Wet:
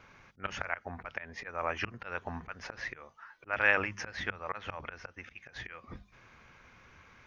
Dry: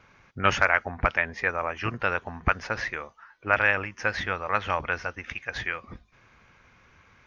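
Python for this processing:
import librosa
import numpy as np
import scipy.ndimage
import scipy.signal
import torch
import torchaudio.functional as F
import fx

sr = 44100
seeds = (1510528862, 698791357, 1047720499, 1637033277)

y = fx.auto_swell(x, sr, attack_ms=335.0)
y = fx.hum_notches(y, sr, base_hz=50, count=4)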